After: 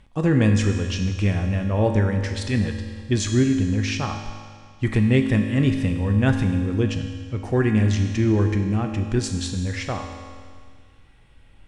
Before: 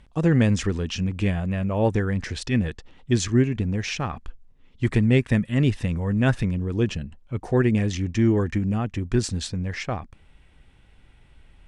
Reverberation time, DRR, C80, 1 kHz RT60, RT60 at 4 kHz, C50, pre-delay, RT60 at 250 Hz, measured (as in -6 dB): 1.9 s, 4.0 dB, 7.0 dB, 1.9 s, 1.9 s, 6.0 dB, 4 ms, 1.9 s